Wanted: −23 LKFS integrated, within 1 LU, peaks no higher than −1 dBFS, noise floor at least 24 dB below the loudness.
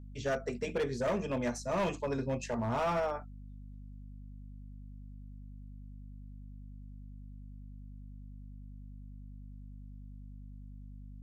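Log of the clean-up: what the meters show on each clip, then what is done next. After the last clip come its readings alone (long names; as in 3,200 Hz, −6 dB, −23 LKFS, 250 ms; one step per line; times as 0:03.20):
share of clipped samples 1.2%; peaks flattened at −27.0 dBFS; mains hum 50 Hz; hum harmonics up to 250 Hz; level of the hum −45 dBFS; integrated loudness −34.0 LKFS; sample peak −27.0 dBFS; target loudness −23.0 LKFS
→ clipped peaks rebuilt −27 dBFS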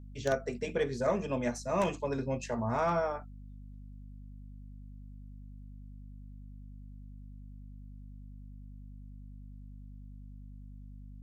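share of clipped samples 0.0%; mains hum 50 Hz; hum harmonics up to 250 Hz; level of the hum −45 dBFS
→ hum removal 50 Hz, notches 5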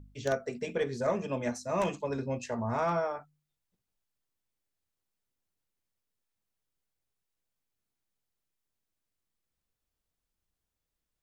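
mains hum none found; integrated loudness −33.0 LKFS; sample peak −17.5 dBFS; target loudness −23.0 LKFS
→ level +10 dB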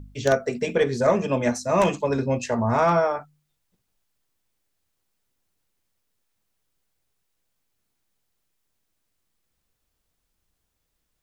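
integrated loudness −23.0 LKFS; sample peak −7.5 dBFS; background noise floor −77 dBFS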